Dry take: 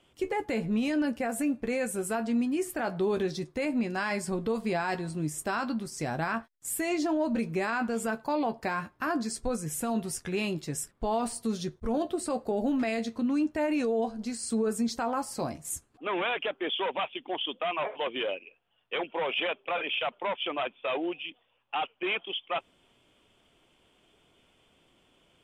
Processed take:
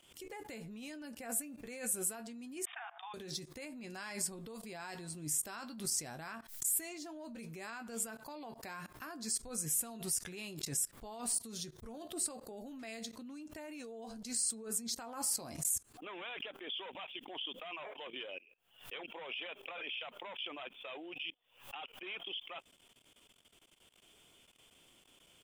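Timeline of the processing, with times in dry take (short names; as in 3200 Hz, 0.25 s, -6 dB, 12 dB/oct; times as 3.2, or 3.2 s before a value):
2.65–3.14 brick-wall FIR band-pass 670–3700 Hz
whole clip: level quantiser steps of 22 dB; pre-emphasis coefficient 0.8; backwards sustainer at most 120 dB/s; gain +10.5 dB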